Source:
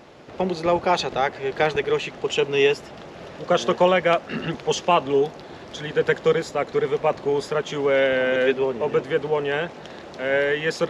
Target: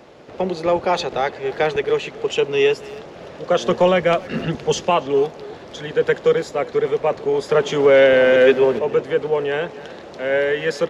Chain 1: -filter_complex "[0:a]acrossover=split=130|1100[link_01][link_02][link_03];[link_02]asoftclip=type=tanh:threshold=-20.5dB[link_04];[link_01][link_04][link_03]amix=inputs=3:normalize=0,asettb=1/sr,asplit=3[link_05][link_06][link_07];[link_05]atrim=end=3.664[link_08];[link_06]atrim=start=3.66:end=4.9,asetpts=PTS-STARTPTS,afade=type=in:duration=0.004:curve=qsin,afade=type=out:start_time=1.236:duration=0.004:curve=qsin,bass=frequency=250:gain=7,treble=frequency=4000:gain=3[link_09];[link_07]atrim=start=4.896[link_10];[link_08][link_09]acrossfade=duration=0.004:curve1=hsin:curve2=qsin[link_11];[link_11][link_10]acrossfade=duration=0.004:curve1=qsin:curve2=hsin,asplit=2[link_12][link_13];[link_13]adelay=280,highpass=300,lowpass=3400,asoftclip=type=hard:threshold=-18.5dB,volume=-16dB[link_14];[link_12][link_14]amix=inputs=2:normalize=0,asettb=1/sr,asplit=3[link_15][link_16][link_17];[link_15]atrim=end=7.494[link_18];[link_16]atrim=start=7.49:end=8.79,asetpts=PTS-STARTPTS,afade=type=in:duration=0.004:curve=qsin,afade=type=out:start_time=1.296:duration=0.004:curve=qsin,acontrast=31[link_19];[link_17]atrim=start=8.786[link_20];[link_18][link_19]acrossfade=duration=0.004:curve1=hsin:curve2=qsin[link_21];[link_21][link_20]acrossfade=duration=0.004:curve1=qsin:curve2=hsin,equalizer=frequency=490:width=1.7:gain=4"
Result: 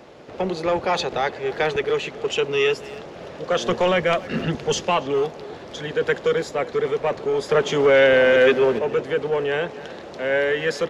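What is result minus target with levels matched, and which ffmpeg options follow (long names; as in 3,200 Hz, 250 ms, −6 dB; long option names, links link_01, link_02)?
soft clipping: distortion +15 dB
-filter_complex "[0:a]acrossover=split=130|1100[link_01][link_02][link_03];[link_02]asoftclip=type=tanh:threshold=-9dB[link_04];[link_01][link_04][link_03]amix=inputs=3:normalize=0,asettb=1/sr,asplit=3[link_05][link_06][link_07];[link_05]atrim=end=3.664[link_08];[link_06]atrim=start=3.66:end=4.9,asetpts=PTS-STARTPTS,afade=type=in:duration=0.004:curve=qsin,afade=type=out:start_time=1.236:duration=0.004:curve=qsin,bass=frequency=250:gain=7,treble=frequency=4000:gain=3[link_09];[link_07]atrim=start=4.896[link_10];[link_08][link_09]acrossfade=duration=0.004:curve1=hsin:curve2=qsin[link_11];[link_11][link_10]acrossfade=duration=0.004:curve1=qsin:curve2=hsin,asplit=2[link_12][link_13];[link_13]adelay=280,highpass=300,lowpass=3400,asoftclip=type=hard:threshold=-18.5dB,volume=-16dB[link_14];[link_12][link_14]amix=inputs=2:normalize=0,asettb=1/sr,asplit=3[link_15][link_16][link_17];[link_15]atrim=end=7.494[link_18];[link_16]atrim=start=7.49:end=8.79,asetpts=PTS-STARTPTS,afade=type=in:duration=0.004:curve=qsin,afade=type=out:start_time=1.296:duration=0.004:curve=qsin,acontrast=31[link_19];[link_17]atrim=start=8.786[link_20];[link_18][link_19]acrossfade=duration=0.004:curve1=hsin:curve2=qsin[link_21];[link_21][link_20]acrossfade=duration=0.004:curve1=qsin:curve2=hsin,equalizer=frequency=490:width=1.7:gain=4"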